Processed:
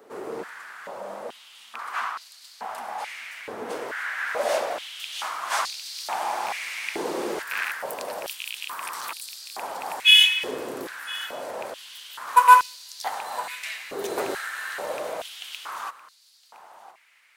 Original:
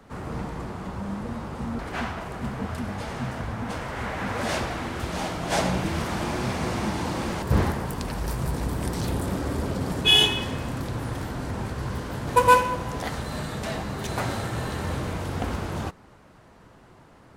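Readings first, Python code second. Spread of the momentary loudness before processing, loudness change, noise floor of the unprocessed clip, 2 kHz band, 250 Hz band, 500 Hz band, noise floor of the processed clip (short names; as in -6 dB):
11 LU, +2.5 dB, -52 dBFS, +4.5 dB, -13.0 dB, -2.0 dB, -54 dBFS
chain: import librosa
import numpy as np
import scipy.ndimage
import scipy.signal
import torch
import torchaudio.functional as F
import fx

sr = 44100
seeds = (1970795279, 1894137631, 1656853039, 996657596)

p1 = fx.rattle_buzz(x, sr, strikes_db=-23.0, level_db=-19.0)
p2 = fx.high_shelf(p1, sr, hz=11000.0, db=12.0)
p3 = p2 + fx.echo_single(p2, sr, ms=1013, db=-17.5, dry=0)
p4 = fx.filter_held_highpass(p3, sr, hz=2.3, low_hz=410.0, high_hz=4400.0)
y = F.gain(torch.from_numpy(p4), -3.0).numpy()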